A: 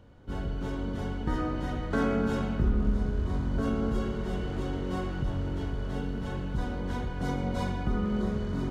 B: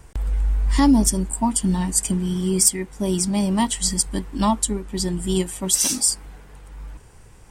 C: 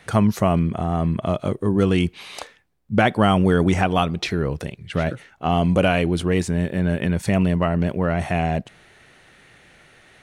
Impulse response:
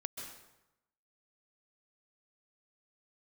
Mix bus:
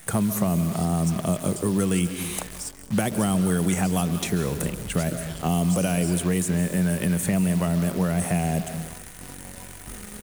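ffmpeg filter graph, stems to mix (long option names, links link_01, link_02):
-filter_complex "[0:a]adelay=2000,volume=-14.5dB,asplit=2[link_01][link_02];[link_02]volume=-9.5dB[link_03];[1:a]bandpass=frequency=5600:width_type=q:width=0.65:csg=0,volume=-15dB,asplit=2[link_04][link_05];[link_05]volume=-9.5dB[link_06];[2:a]equalizer=frequency=180:width=4.2:gain=7.5,aexciter=amount=6.8:drive=8.9:freq=6900,volume=-2dB,asplit=2[link_07][link_08];[link_08]volume=-5dB[link_09];[3:a]atrim=start_sample=2205[link_10];[link_03][link_06][link_09]amix=inputs=3:normalize=0[link_11];[link_11][link_10]afir=irnorm=-1:irlink=0[link_12];[link_01][link_04][link_07][link_12]amix=inputs=4:normalize=0,acrossover=split=160|550|3700[link_13][link_14][link_15][link_16];[link_13]acompressor=threshold=-31dB:ratio=4[link_17];[link_14]acompressor=threshold=-25dB:ratio=4[link_18];[link_15]acompressor=threshold=-33dB:ratio=4[link_19];[link_16]acompressor=threshold=-32dB:ratio=4[link_20];[link_17][link_18][link_19][link_20]amix=inputs=4:normalize=0,acrusher=bits=7:dc=4:mix=0:aa=0.000001"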